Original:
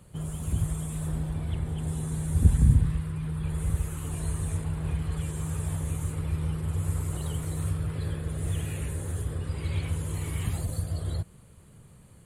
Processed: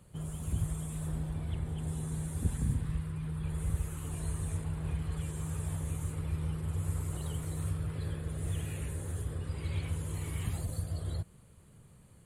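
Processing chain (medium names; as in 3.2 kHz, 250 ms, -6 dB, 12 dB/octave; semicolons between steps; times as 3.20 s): 2.28–2.89 s: bass shelf 150 Hz -10 dB; trim -5 dB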